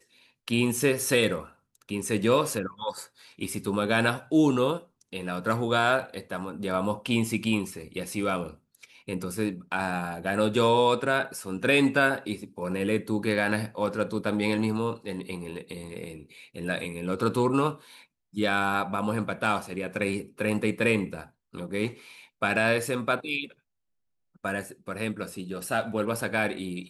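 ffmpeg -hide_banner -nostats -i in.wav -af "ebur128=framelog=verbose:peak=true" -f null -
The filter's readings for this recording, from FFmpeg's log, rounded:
Integrated loudness:
  I:         -27.5 LUFS
  Threshold: -38.1 LUFS
Loudness range:
  LRA:         5.8 LU
  Threshold: -48.1 LUFS
  LRA low:   -31.1 LUFS
  LRA high:  -25.2 LUFS
True peak:
  Peak:       -8.7 dBFS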